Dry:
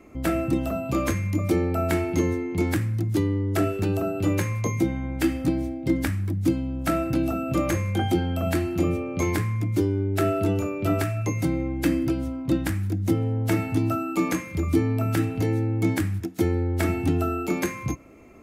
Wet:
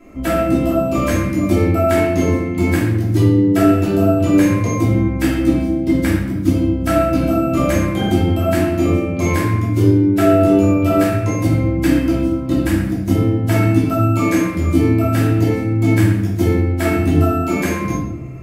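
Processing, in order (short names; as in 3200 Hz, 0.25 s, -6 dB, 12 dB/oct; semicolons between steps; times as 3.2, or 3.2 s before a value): shoebox room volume 260 m³, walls mixed, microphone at 2.9 m; gain -1 dB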